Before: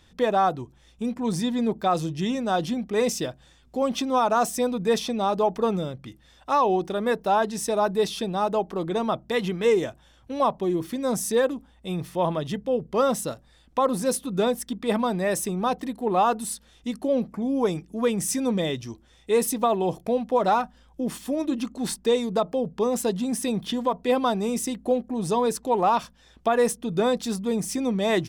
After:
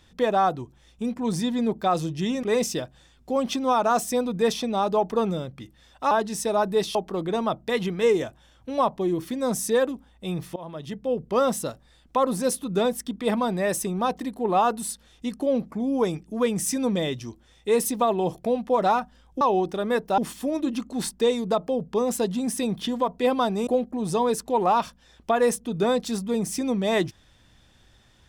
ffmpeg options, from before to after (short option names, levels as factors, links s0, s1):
-filter_complex "[0:a]asplit=8[s0][s1][s2][s3][s4][s5][s6][s7];[s0]atrim=end=2.432[s8];[s1]atrim=start=2.888:end=6.572[s9];[s2]atrim=start=7.338:end=8.182[s10];[s3]atrim=start=8.568:end=12.18,asetpts=PTS-STARTPTS,afade=t=out:st=3.608:d=0.004:c=hsin:silence=0.0841395[s11];[s4]atrim=start=12.18:end=21.032,asetpts=PTS-STARTPTS,afade=t=in:d=0.64:silence=0.0841395[s12];[s5]atrim=start=6.568:end=7.342[s13];[s6]atrim=start=21.028:end=24.522[s14];[s7]atrim=start=24.838[s15];[s8][s9]acrossfade=d=0.004:c1=hsin:c2=hsin[s16];[s16][s10]acrossfade=d=0.004:c1=hsin:c2=hsin[s17];[s11][s12]concat=n=2:v=0:a=1[s18];[s17][s18]acrossfade=d=0.004:c1=hsin:c2=hsin[s19];[s19][s13]acrossfade=d=0.004:c1=hsin:c2=hsin[s20];[s20][s14]acrossfade=d=0.004:c1=hsin:c2=hsin[s21];[s21][s15]acrossfade=d=0.004:c1=hsin:c2=hsin"